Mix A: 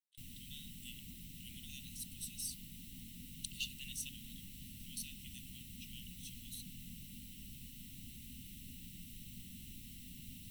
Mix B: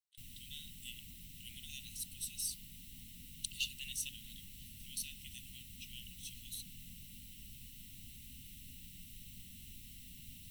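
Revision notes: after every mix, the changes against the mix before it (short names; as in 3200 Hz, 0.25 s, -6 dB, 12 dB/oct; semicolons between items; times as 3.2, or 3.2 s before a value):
speech +3.5 dB; background: add bell 240 Hz -7 dB 1.6 oct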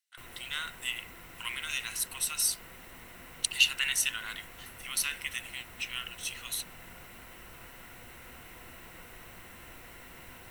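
speech +10.5 dB; master: remove elliptic band-stop 220–3200 Hz, stop band 60 dB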